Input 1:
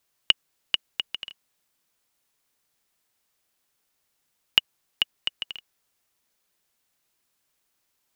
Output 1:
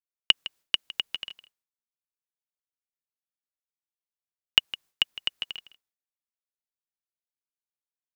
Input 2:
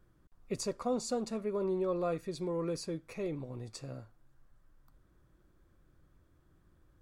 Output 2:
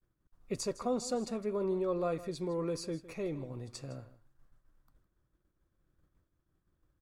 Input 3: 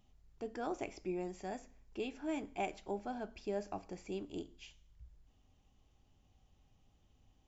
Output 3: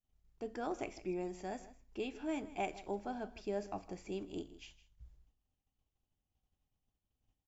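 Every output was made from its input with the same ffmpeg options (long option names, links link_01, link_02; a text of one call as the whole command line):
ffmpeg -i in.wav -filter_complex "[0:a]agate=range=-33dB:threshold=-56dB:ratio=3:detection=peak,asplit=2[link_01][link_02];[link_02]aecho=0:1:159:0.15[link_03];[link_01][link_03]amix=inputs=2:normalize=0" out.wav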